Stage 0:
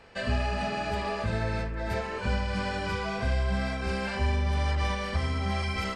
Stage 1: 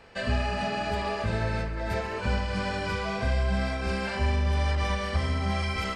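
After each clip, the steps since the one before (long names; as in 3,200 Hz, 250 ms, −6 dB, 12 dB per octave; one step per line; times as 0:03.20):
echo machine with several playback heads 67 ms, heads second and third, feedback 62%, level −17.5 dB
level +1 dB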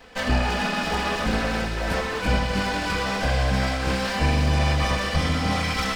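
lower of the sound and its delayed copy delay 4 ms
delay with a high-pass on its return 330 ms, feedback 74%, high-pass 3,100 Hz, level −4 dB
level +6.5 dB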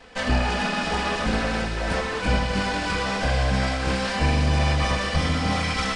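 downsampling to 22,050 Hz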